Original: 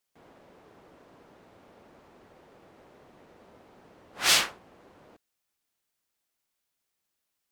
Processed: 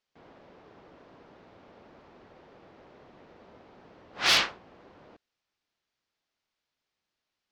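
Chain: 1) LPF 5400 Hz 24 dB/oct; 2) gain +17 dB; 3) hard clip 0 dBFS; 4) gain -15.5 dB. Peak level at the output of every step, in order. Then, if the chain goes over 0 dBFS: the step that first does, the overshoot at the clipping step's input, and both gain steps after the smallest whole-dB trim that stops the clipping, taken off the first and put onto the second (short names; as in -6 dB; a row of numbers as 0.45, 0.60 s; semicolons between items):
-10.5, +6.5, 0.0, -15.5 dBFS; step 2, 6.5 dB; step 2 +10 dB, step 4 -8.5 dB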